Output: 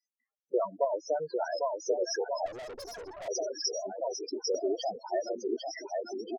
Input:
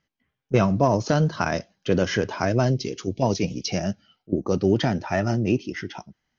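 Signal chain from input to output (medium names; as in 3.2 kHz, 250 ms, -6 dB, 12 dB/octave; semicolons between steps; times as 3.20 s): ladder high-pass 340 Hz, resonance 20%; resonant high shelf 4.2 kHz +10 dB, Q 1.5; on a send: bouncing-ball echo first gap 800 ms, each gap 0.85×, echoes 5; on the sum: reverb removal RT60 0.82 s; loudest bins only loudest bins 8; 0.68–1.16 s: low-pass that closes with the level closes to 580 Hz, closed at -22 dBFS; 2.46–3.28 s: valve stage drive 40 dB, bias 0.7; 4.54–4.96 s: three bands compressed up and down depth 70%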